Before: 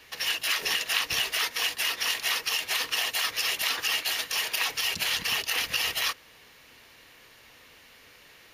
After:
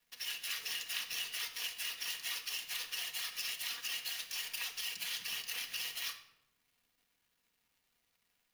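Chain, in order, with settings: median filter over 3 samples; high-pass 85 Hz 24 dB/octave; pre-emphasis filter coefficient 0.9; de-hum 320.6 Hz, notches 35; crossover distortion -56.5 dBFS; tone controls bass +4 dB, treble -5 dB; simulated room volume 2800 m³, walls furnished, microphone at 1.8 m; trim -3.5 dB

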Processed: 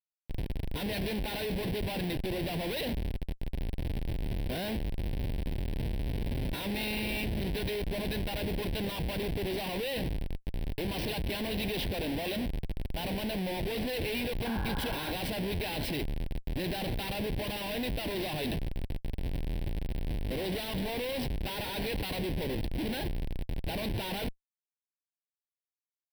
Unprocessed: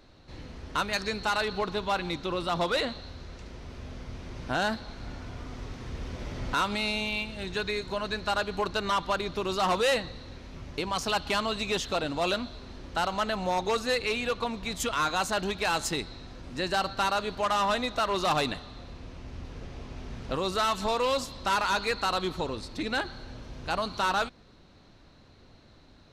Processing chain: Schmitt trigger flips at -36 dBFS; painted sound noise, 14.45–15.12 s, 750–1700 Hz -32 dBFS; static phaser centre 3 kHz, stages 4

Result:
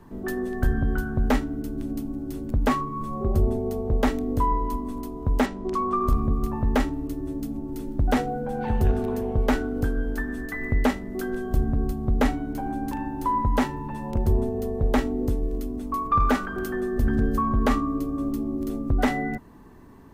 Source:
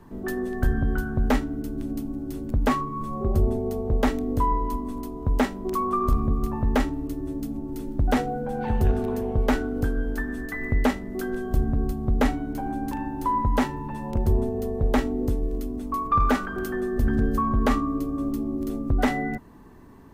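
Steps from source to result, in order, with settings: 5.46–6.01 s: low-pass 6.6 kHz 12 dB/octave

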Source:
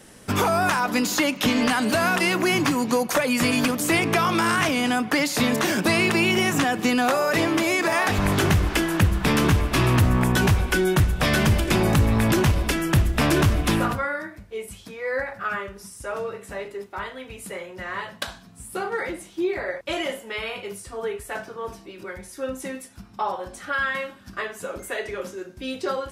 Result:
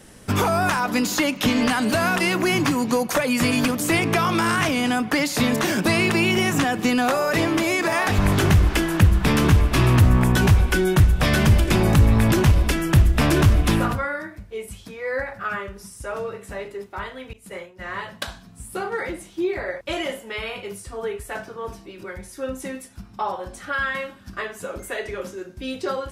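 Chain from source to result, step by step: 17.33–17.84 s: expander -31 dBFS; bass shelf 120 Hz +7.5 dB

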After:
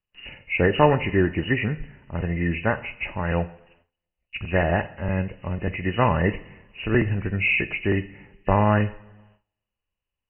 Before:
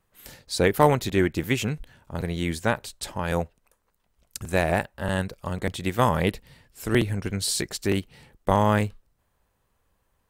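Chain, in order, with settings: knee-point frequency compression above 1.7 kHz 4:1; 4.88–5.68 s: dynamic bell 1.4 kHz, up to -6 dB, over -42 dBFS, Q 0.75; two-slope reverb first 0.57 s, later 1.8 s, from -18 dB, DRR 11 dB; gate with hold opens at -48 dBFS; bass shelf 140 Hz +5 dB

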